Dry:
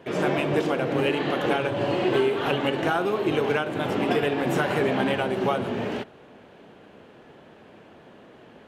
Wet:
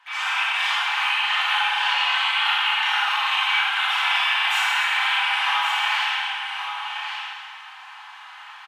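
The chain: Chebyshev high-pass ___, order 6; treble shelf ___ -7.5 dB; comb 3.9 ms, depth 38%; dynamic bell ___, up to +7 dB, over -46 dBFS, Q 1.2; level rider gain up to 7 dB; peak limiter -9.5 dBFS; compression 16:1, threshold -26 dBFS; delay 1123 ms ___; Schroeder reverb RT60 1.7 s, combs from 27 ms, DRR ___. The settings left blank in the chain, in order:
850 Hz, 10 kHz, 3 kHz, -7.5 dB, -7.5 dB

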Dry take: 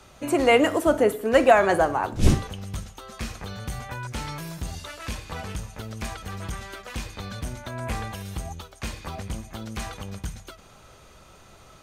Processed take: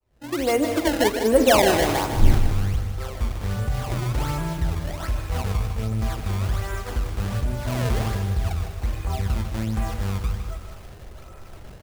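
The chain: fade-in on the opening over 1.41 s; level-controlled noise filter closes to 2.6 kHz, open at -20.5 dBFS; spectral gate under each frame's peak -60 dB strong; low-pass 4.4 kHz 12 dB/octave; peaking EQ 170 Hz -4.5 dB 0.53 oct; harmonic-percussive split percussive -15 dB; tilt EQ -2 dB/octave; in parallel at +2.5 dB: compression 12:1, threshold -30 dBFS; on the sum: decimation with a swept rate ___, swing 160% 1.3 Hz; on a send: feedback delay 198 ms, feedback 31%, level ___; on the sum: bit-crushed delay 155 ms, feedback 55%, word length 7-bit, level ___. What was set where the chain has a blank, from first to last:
22×, -13 dB, -8.5 dB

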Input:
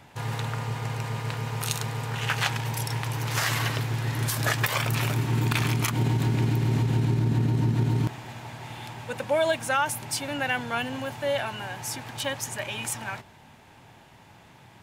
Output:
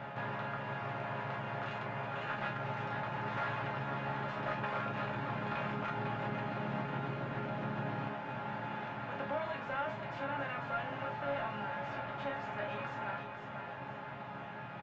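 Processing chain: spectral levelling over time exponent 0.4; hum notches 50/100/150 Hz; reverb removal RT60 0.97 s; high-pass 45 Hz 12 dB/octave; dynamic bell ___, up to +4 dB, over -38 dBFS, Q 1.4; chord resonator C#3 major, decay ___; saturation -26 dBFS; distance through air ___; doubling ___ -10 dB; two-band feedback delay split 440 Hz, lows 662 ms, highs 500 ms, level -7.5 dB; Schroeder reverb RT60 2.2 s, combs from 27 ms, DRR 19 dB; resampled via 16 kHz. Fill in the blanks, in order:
1.1 kHz, 0.23 s, 490 m, 39 ms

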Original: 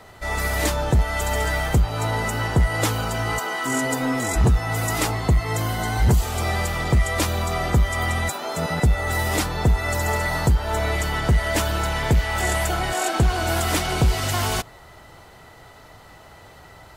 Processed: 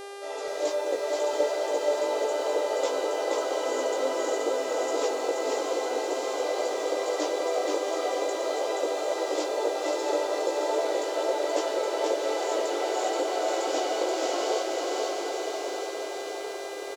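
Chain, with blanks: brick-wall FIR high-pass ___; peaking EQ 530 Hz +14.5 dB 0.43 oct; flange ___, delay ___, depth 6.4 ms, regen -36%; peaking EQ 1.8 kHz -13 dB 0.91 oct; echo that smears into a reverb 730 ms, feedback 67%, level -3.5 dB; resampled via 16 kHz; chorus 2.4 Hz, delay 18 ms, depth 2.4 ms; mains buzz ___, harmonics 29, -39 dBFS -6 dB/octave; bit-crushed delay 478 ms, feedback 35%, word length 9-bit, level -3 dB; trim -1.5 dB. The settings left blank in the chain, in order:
280 Hz, 1.2 Hz, 5.5 ms, 400 Hz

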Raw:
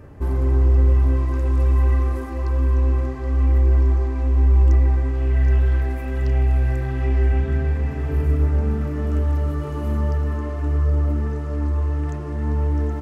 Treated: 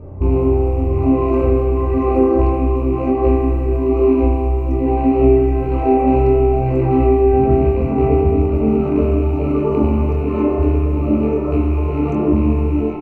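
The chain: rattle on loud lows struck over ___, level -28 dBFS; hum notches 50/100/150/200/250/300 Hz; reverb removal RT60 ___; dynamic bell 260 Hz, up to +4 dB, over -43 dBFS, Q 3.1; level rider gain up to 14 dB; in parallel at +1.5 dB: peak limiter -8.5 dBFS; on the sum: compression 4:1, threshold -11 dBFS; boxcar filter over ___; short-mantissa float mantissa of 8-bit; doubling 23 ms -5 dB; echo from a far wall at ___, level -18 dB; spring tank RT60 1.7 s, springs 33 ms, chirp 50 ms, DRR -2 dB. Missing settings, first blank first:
-21 dBFS, 1.7 s, 26 samples, 39 m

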